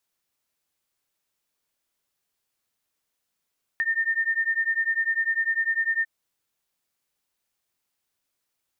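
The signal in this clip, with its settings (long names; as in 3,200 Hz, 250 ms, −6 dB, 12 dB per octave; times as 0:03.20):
two tones that beat 1,810 Hz, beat 10 Hz, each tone −25 dBFS 2.25 s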